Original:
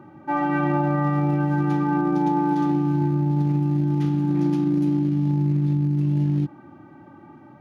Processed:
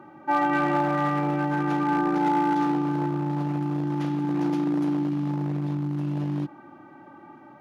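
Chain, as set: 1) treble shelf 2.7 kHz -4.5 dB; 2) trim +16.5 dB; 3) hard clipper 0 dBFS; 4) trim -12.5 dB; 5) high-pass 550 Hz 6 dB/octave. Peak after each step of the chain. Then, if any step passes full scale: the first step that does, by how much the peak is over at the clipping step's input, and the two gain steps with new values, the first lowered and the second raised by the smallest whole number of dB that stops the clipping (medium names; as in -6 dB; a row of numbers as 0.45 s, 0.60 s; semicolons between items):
-10.5 dBFS, +6.0 dBFS, 0.0 dBFS, -12.5 dBFS, -11.5 dBFS; step 2, 6.0 dB; step 2 +10.5 dB, step 4 -6.5 dB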